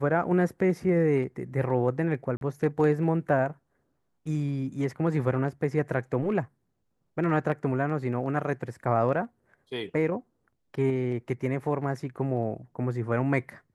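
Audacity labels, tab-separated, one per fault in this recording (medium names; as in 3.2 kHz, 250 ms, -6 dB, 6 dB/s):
2.370000	2.410000	dropout 42 ms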